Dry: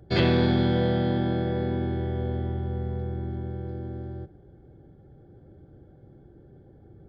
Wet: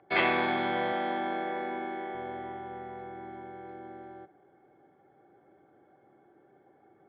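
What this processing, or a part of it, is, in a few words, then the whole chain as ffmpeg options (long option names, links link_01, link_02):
phone earpiece: -filter_complex "[0:a]highpass=480,equalizer=frequency=500:width_type=q:width=4:gain=-6,equalizer=frequency=760:width_type=q:width=4:gain=5,equalizer=frequency=1100:width_type=q:width=4:gain=8,equalizer=frequency=2200:width_type=q:width=4:gain=9,lowpass=frequency=3000:width=0.5412,lowpass=frequency=3000:width=1.3066,asettb=1/sr,asplit=3[link_01][link_02][link_03];[link_01]atrim=end=0.924[link_04];[link_02]atrim=start=0.92:end=2.15,asetpts=PTS-STARTPTS,afade=type=in:duration=0.004:curve=qsin,afade=type=out:start_time=1.226:duration=0.004:curve=qsin,highpass=frequency=180:width=0.5412,highpass=frequency=180:width=1.3066[link_05];[link_03]atrim=start=2.146[link_06];[link_04][link_05]acrossfade=duration=0.004:curve1=hsin:curve2=qsin[link_07];[link_07][link_06]acrossfade=duration=0.004:curve1=qsin:curve2=hsin"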